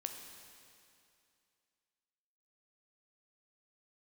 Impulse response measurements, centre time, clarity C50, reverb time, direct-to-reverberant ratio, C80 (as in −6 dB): 55 ms, 5.0 dB, 2.5 s, 4.0 dB, 6.0 dB